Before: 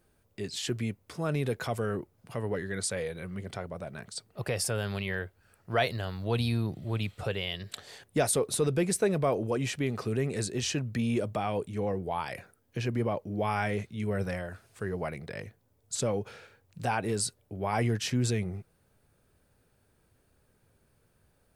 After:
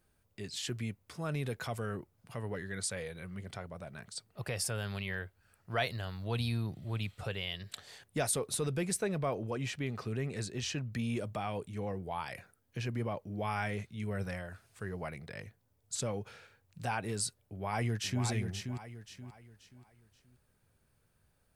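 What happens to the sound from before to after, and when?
9.02–10.92 s: peaking EQ 10 kHz -6.5 dB 1.2 oct
17.40–18.24 s: echo throw 530 ms, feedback 35%, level -6 dB
whole clip: peaking EQ 400 Hz -5 dB 1.8 oct; trim -3.5 dB

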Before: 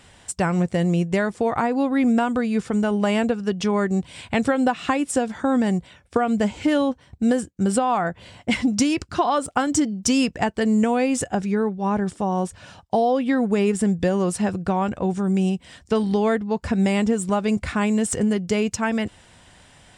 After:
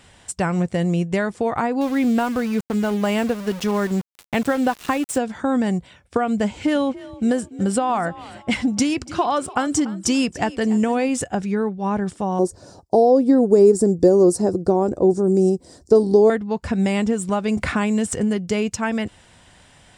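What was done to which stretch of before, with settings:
1.81–5.18 s: small samples zeroed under -30.5 dBFS
6.46–11.09 s: frequency-shifting echo 289 ms, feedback 36%, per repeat +39 Hz, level -18 dB
12.39–16.30 s: FFT filter 210 Hz 0 dB, 350 Hz +13 dB, 3 kHz -21 dB, 4.6 kHz +3 dB
17.57–18.12 s: three bands compressed up and down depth 70%

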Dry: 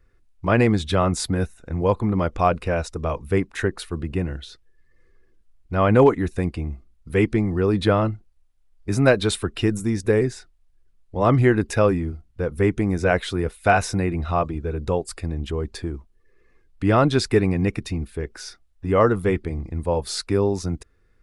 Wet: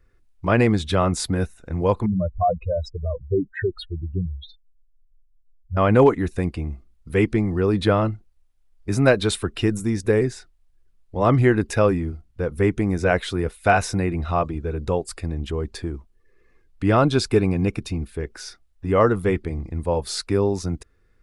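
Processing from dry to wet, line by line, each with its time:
2.06–5.77 s: spectral contrast enhancement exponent 3.9
16.97–17.99 s: band-stop 1.9 kHz, Q 5.7

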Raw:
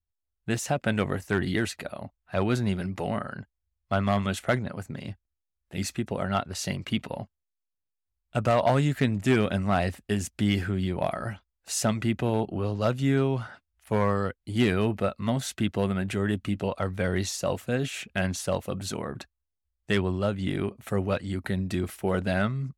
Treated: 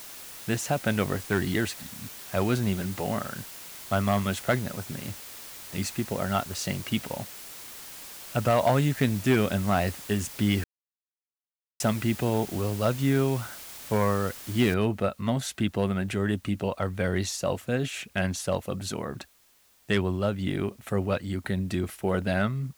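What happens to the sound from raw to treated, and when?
1.82–2.09 s: spectral replace 290–3300 Hz
10.64–11.80 s: mute
14.74 s: noise floor step -43 dB -62 dB

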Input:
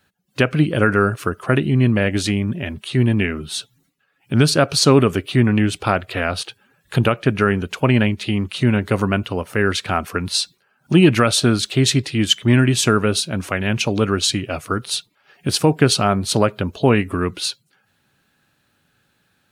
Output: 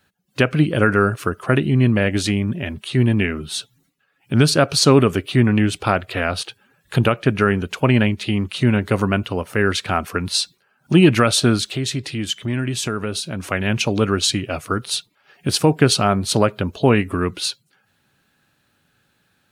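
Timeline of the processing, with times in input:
11.63–13.48 s: compression 2:1, threshold -25 dBFS

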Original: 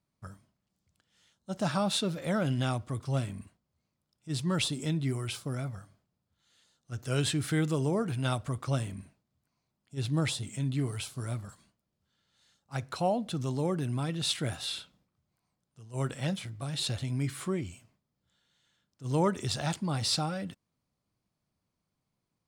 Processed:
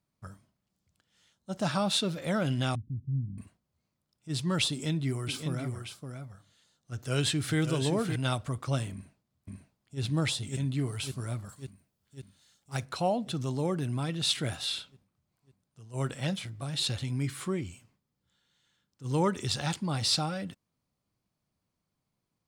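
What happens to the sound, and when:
2.75–3.38 s: inverse Chebyshev low-pass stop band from 600 Hz, stop band 50 dB
4.70–8.16 s: delay 568 ms -7 dB
8.92–10.01 s: echo throw 550 ms, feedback 70%, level -1 dB
11.45–12.84 s: treble shelf 10 kHz -> 5.4 kHz +10 dB
16.81–19.84 s: band-stop 650 Hz, Q 7
whole clip: dynamic bell 3.6 kHz, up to +3 dB, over -45 dBFS, Q 0.74

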